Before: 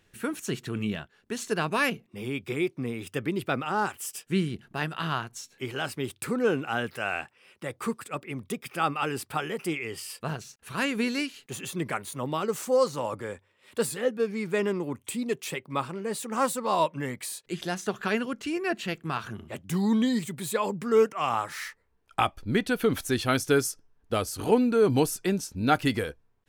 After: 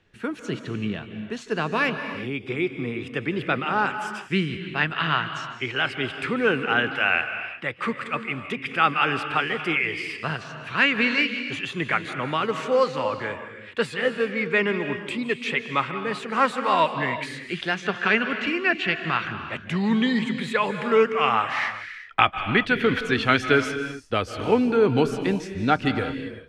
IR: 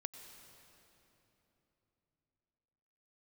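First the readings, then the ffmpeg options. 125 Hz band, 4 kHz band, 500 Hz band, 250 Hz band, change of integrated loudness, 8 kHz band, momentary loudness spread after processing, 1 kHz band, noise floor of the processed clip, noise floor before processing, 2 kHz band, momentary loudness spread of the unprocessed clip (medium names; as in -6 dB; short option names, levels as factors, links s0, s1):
+2.5 dB, +7.0 dB, +2.5 dB, +2.5 dB, +5.0 dB, -10.0 dB, 10 LU, +5.5 dB, -41 dBFS, -68 dBFS, +10.0 dB, 12 LU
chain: -filter_complex "[0:a]lowpass=3900,acrossover=split=230|1800|2600[s0][s1][s2][s3];[s2]dynaudnorm=f=660:g=11:m=6.31[s4];[s0][s1][s4][s3]amix=inputs=4:normalize=0[s5];[1:a]atrim=start_sample=2205,afade=t=out:st=0.29:d=0.01,atrim=end_sample=13230,asetrate=26901,aresample=44100[s6];[s5][s6]afir=irnorm=-1:irlink=0,volume=1.41"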